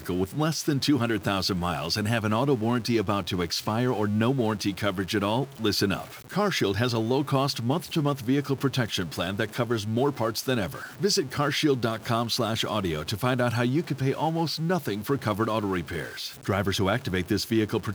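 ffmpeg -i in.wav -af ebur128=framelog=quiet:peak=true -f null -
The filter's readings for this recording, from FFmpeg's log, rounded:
Integrated loudness:
  I:         -26.5 LUFS
  Threshold: -36.5 LUFS
Loudness range:
  LRA:         1.6 LU
  Threshold: -46.5 LUFS
  LRA low:   -27.5 LUFS
  LRA high:  -25.9 LUFS
True peak:
  Peak:       -9.7 dBFS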